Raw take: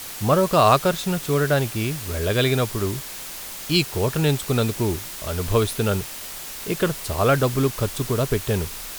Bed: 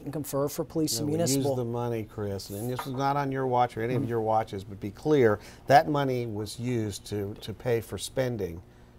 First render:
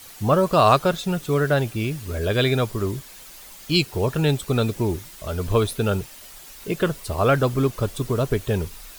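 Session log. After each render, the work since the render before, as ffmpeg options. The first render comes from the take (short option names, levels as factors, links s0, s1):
-af "afftdn=nr=10:nf=-35"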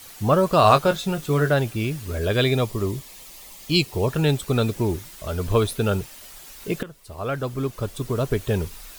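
-filter_complex "[0:a]asettb=1/sr,asplit=3[s0][s1][s2];[s0]atrim=end=0.614[s3];[s1]atrim=start=0.61:end=1.49,asetpts=PTS-STARTPTS,afade=t=in:d=0.004:c=qsin,afade=t=out:st=0.876:d=0.004:c=qsin,asplit=2[s4][s5];[s5]adelay=20,volume=0.376[s6];[s4][s6]amix=inputs=2:normalize=0,atrim=end_sample=38808[s7];[s2]atrim=start=1.486[s8];[s3][s7]acrossfade=d=0.004:c1=hsin:c2=qsin[s9];[s9][s8]acrossfade=d=0.004:c1=qsin:c2=hsin,asettb=1/sr,asplit=3[s10][s11][s12];[s10]atrim=end=2.444[s13];[s11]atrim=start=2.44:end=4.08,asetpts=PTS-STARTPTS,afade=t=in:d=0.004:c=qsin,afade=t=out:st=1.636:d=0.004:c=qsin,equalizer=f=1500:w=6.7:g=-13[s14];[s12]atrim=start=4.076[s15];[s13][s14]acrossfade=d=0.004:c1=hsin:c2=qsin[s16];[s16][s15]acrossfade=d=0.004:c1=qsin:c2=hsin,asplit=2[s17][s18];[s17]atrim=end=6.83,asetpts=PTS-STARTPTS,afade=t=out:st=6.826:d=0.004:c=hsin:silence=0.112202[s19];[s18]atrim=start=6.83,asetpts=PTS-STARTPTS,afade=t=in:d=1.67:silence=0.112202[s20];[s19][s20]concat=n=2:v=0:a=1"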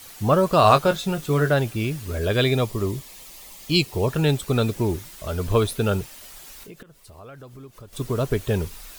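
-filter_complex "[0:a]asettb=1/sr,asplit=3[s0][s1][s2];[s0]atrim=end=6.634[s3];[s1]atrim=start=6.63:end=7.93,asetpts=PTS-STARTPTS,afade=t=in:d=0.004:c=qsin,afade=t=out:st=1.296:d=0.004:c=qsin,acompressor=threshold=0.00631:ratio=3:attack=3.2:release=140:knee=1:detection=peak[s4];[s2]atrim=start=7.926[s5];[s3][s4]acrossfade=d=0.004:c1=hsin:c2=qsin[s6];[s6][s5]acrossfade=d=0.004:c1=qsin:c2=hsin"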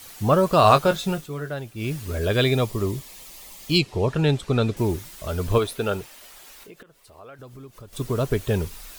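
-filter_complex "[0:a]asettb=1/sr,asplit=3[s0][s1][s2];[s0]atrim=end=3.784[s3];[s1]atrim=start=3.78:end=4.77,asetpts=PTS-STARTPTS,afade=t=in:d=0.004:c=qsin,afade=t=out:st=0.986:d=0.004:c=qsin,adynamicsmooth=sensitivity=0.5:basefreq=6600[s4];[s2]atrim=start=4.766[s5];[s3][s4]acrossfade=d=0.004:c1=hsin:c2=qsin[s6];[s6][s5]acrossfade=d=0.004:c1=qsin:c2=hsin,asettb=1/sr,asplit=3[s7][s8][s9];[s7]atrim=end=5.584[s10];[s8]atrim=start=5.58:end=7.39,asetpts=PTS-STARTPTS,afade=t=in:d=0.004:c=qsin,afade=t=out:st=1.806:d=0.004:c=qsin,bass=f=250:g=-9,treble=f=4000:g=-4[s11];[s9]atrim=start=7.386[s12];[s10][s11]acrossfade=d=0.004:c1=hsin:c2=qsin[s13];[s13][s12]acrossfade=d=0.004:c1=qsin:c2=hsin,asplit=3[s14][s15][s16];[s14]atrim=end=1.29,asetpts=PTS-STARTPTS,afade=t=out:st=1.13:d=0.16:silence=0.281838[s17];[s15]atrim=start=1.29:end=1.75,asetpts=PTS-STARTPTS,volume=0.282[s18];[s16]atrim=start=1.75,asetpts=PTS-STARTPTS,afade=t=in:d=0.16:silence=0.281838[s19];[s17][s18][s19]concat=n=3:v=0:a=1"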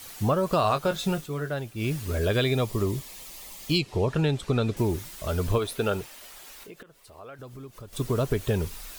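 -af "acompressor=threshold=0.1:ratio=6"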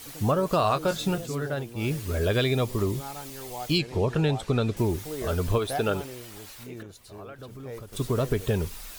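-filter_complex "[1:a]volume=0.224[s0];[0:a][s0]amix=inputs=2:normalize=0"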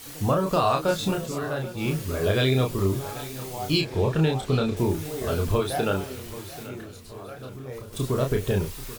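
-filter_complex "[0:a]asplit=2[s0][s1];[s1]adelay=31,volume=0.668[s2];[s0][s2]amix=inputs=2:normalize=0,aecho=1:1:785|1570|2355|3140:0.158|0.0745|0.035|0.0165"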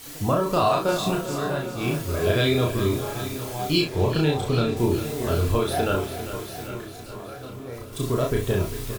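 -filter_complex "[0:a]asplit=2[s0][s1];[s1]adelay=34,volume=0.631[s2];[s0][s2]amix=inputs=2:normalize=0,aecho=1:1:400|800|1200|1600|2000|2400|2800:0.266|0.16|0.0958|0.0575|0.0345|0.0207|0.0124"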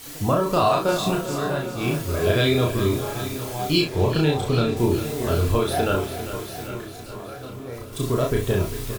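-af "volume=1.19"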